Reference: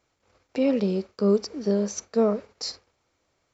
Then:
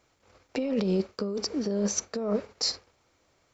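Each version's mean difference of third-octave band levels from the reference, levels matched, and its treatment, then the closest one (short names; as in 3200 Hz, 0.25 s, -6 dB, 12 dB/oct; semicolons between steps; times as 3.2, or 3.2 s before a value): 5.5 dB: negative-ratio compressor -27 dBFS, ratio -1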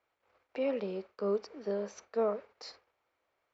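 4.0 dB: three-band isolator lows -14 dB, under 420 Hz, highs -18 dB, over 3300 Hz; gain -4.5 dB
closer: second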